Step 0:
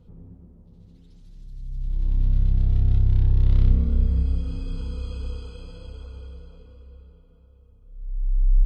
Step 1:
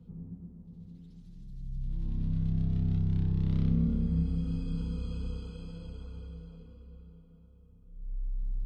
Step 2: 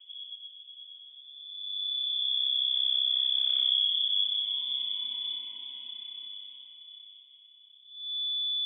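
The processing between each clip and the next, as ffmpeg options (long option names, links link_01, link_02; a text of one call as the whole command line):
ffmpeg -i in.wav -filter_complex "[0:a]equalizer=frequency=180:width=1.3:gain=12.5,bandreject=frequency=570:width=12,acrossover=split=110|1600[link_01][link_02][link_03];[link_01]acompressor=threshold=-24dB:ratio=6[link_04];[link_04][link_02][link_03]amix=inputs=3:normalize=0,volume=-6.5dB" out.wav
ffmpeg -i in.wav -af "lowpass=frequency=3000:width_type=q:width=0.5098,lowpass=frequency=3000:width_type=q:width=0.6013,lowpass=frequency=3000:width_type=q:width=0.9,lowpass=frequency=3000:width_type=q:width=2.563,afreqshift=-3500" out.wav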